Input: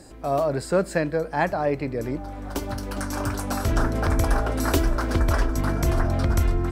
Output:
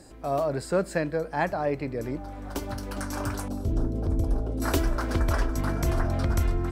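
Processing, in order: 3.48–4.62 EQ curve 390 Hz 0 dB, 1800 Hz -24 dB, 3300 Hz -14 dB; gain -3.5 dB

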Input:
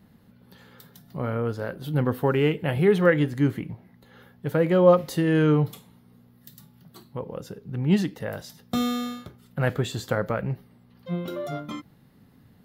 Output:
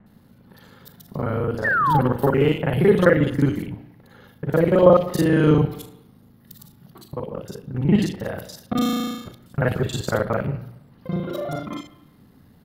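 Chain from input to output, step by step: local time reversal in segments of 36 ms; de-hum 58.99 Hz, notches 13; painted sound fall, 1.64–2, 780–1900 Hz -23 dBFS; bands offset in time lows, highs 60 ms, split 2400 Hz; on a send at -17.5 dB: reverb RT60 0.85 s, pre-delay 0.118 s; on the sum: gain +4.5 dB

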